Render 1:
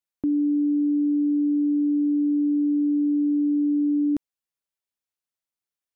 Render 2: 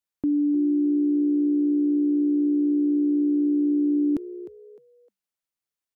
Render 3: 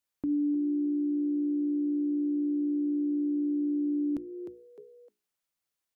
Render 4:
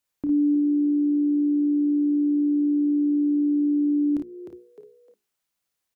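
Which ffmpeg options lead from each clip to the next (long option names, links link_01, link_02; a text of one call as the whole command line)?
ffmpeg -i in.wav -filter_complex "[0:a]asplit=4[link_01][link_02][link_03][link_04];[link_02]adelay=305,afreqshift=64,volume=-15dB[link_05];[link_03]adelay=610,afreqshift=128,volume=-25.5dB[link_06];[link_04]adelay=915,afreqshift=192,volume=-35.9dB[link_07];[link_01][link_05][link_06][link_07]amix=inputs=4:normalize=0" out.wav
ffmpeg -i in.wav -af "alimiter=level_in=2.5dB:limit=-24dB:level=0:latency=1:release=457,volume=-2.5dB,bandreject=frequency=60:width_type=h:width=6,bandreject=frequency=120:width_type=h:width=6,bandreject=frequency=180:width_type=h:width=6,bandreject=frequency=240:width_type=h:width=6,bandreject=frequency=300:width_type=h:width=6,bandreject=frequency=360:width_type=h:width=6,bandreject=frequency=420:width_type=h:width=6,volume=3dB" out.wav
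ffmpeg -i in.wav -af "aecho=1:1:30|55:0.316|0.473,volume=4dB" out.wav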